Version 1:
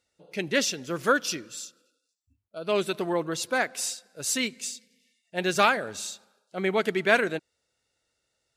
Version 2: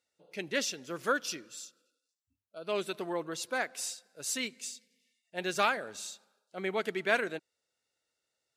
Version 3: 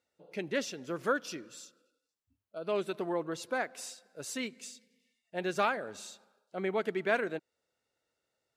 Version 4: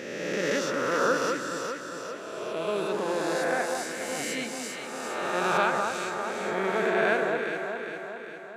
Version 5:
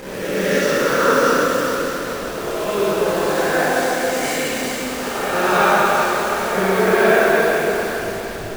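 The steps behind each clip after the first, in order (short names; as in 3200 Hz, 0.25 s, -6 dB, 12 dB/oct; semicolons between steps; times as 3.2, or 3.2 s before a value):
HPF 220 Hz 6 dB/oct; gain -6.5 dB
in parallel at -1 dB: compressor, threshold -41 dBFS, peak gain reduction 18 dB; on the sum: high shelf 2100 Hz -10.5 dB
spectral swells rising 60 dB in 2.17 s; echo with dull and thin repeats by turns 0.202 s, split 1500 Hz, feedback 75%, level -3 dB
level-crossing sampler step -33.5 dBFS; plate-style reverb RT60 2.7 s, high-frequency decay 0.95×, DRR -7.5 dB; gain +2.5 dB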